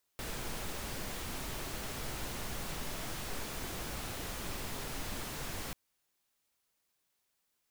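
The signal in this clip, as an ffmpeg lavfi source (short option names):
-f lavfi -i "anoisesrc=c=pink:a=0.0543:d=5.54:r=44100:seed=1"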